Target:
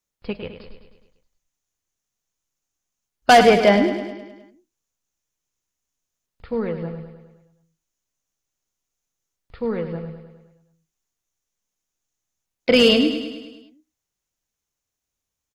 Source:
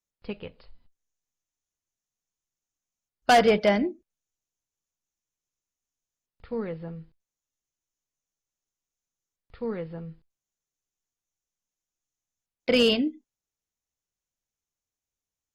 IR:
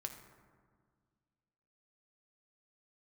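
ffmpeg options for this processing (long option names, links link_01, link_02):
-af "aecho=1:1:104|208|312|416|520|624|728:0.335|0.194|0.113|0.0654|0.0379|0.022|0.0128,volume=6.5dB"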